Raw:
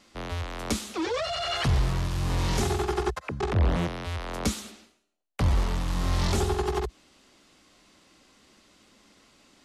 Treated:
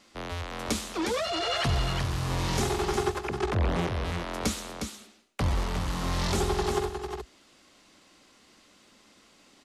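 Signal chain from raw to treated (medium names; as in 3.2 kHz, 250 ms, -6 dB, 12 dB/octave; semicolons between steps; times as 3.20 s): bass shelf 160 Hz -5 dB; delay 359 ms -6.5 dB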